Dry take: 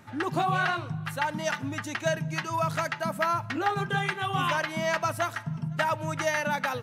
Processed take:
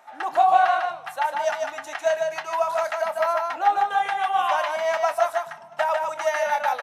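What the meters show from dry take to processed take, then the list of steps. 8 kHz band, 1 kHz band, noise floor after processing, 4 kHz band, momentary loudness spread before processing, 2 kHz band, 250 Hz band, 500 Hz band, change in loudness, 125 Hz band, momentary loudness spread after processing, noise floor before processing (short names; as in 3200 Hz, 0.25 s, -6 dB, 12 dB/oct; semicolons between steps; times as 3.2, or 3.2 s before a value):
-0.5 dB, +8.0 dB, -43 dBFS, -0.5 dB, 4 LU, +1.0 dB, under -15 dB, +7.5 dB, +5.5 dB, under -25 dB, 8 LU, -41 dBFS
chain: resonant high-pass 720 Hz, resonance Q 4.9; notch 4600 Hz, Q 25; doubler 27 ms -13 dB; echo 0.149 s -4 dB; downsampling 32000 Hz; gain -2.5 dB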